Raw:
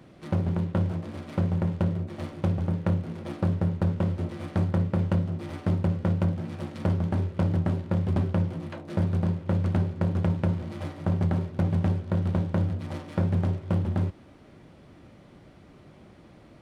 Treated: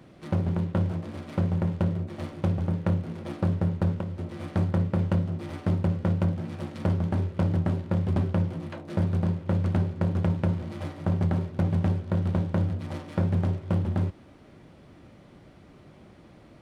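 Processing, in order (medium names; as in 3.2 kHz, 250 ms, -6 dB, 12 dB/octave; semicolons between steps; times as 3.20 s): 3.95–4.46 s: compression 6:1, threshold -29 dBFS, peak gain reduction 8 dB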